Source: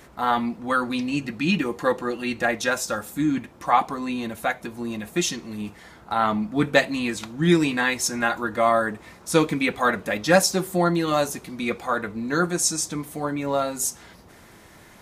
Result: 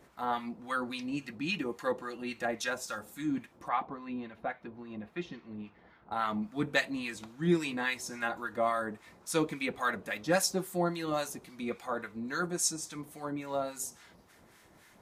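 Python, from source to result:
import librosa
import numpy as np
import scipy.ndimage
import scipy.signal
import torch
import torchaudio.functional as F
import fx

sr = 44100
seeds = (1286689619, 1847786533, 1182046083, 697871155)

y = fx.low_shelf(x, sr, hz=110.0, db=-5.5)
y = fx.harmonic_tremolo(y, sr, hz=3.6, depth_pct=70, crossover_hz=1000.0)
y = fx.air_absorb(y, sr, metres=320.0, at=(3.68, 6.12))
y = F.gain(torch.from_numpy(y), -7.0).numpy()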